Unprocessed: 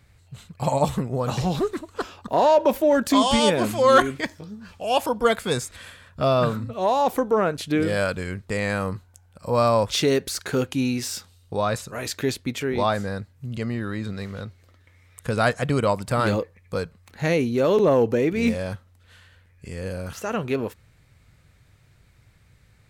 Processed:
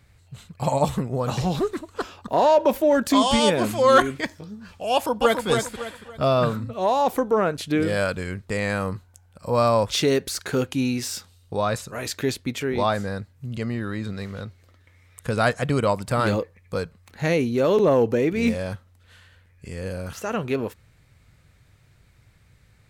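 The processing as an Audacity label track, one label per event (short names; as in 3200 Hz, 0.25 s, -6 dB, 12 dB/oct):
4.930000	5.470000	echo throw 0.28 s, feedback 35%, level -5 dB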